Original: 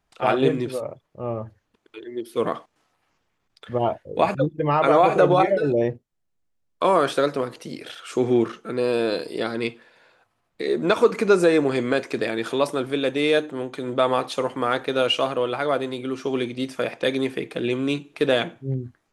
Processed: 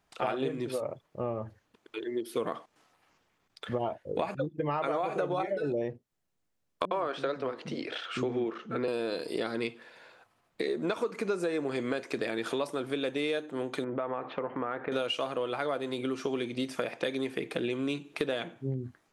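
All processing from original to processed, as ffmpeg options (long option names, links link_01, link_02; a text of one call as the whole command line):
ffmpeg -i in.wav -filter_complex "[0:a]asettb=1/sr,asplit=3[link_01][link_02][link_03];[link_01]atrim=end=6.854[link_04];[link_02]atrim=start=6.85:end=8.88,asetpts=PTS-STARTPTS,afade=type=in:duration=0.004:curve=qsin,afade=type=out:start_time=2.026:duration=0.004:curve=qsin,lowpass=3800,acrossover=split=230[link_05][link_06];[link_06]adelay=60[link_07];[link_05][link_07]amix=inputs=2:normalize=0,atrim=end_sample=89523[link_08];[link_03]atrim=start=8.876[link_09];[link_04][link_08]acrossfade=duration=0.004:curve1=hsin:curve2=qsin[link_10];[link_10][link_09]acrossfade=duration=0.004:curve1=qsin:curve2=hsin,asettb=1/sr,asplit=3[link_11][link_12][link_13];[link_11]atrim=end=13.844[link_14];[link_12]atrim=start=13.84:end=14.92,asetpts=PTS-STARTPTS,afade=type=in:duration=0.004:curve=qsin,afade=type=out:start_time=1.076:duration=0.004:curve=qsin,lowpass=frequency=2100:width=0.5412,lowpass=frequency=2100:width=1.3066,acompressor=threshold=-34dB:ratio=2:attack=3.2:release=140:knee=1:detection=peak[link_15];[link_13]atrim=start=14.916[link_16];[link_14][link_15]acrossfade=duration=0.004:curve1=hsin:curve2=qsin[link_17];[link_17][link_16]acrossfade=duration=0.004:curve1=qsin:curve2=hsin,lowshelf=frequency=74:gain=-10,acompressor=threshold=-31dB:ratio=6,volume=2dB" out.wav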